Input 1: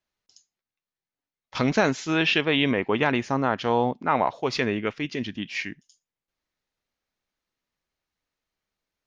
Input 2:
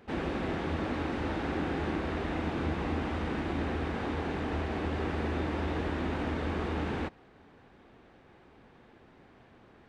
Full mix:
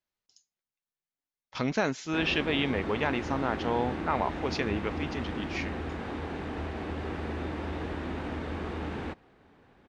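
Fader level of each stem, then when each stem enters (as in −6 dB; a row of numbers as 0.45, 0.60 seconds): −6.5, −2.5 decibels; 0.00, 2.05 seconds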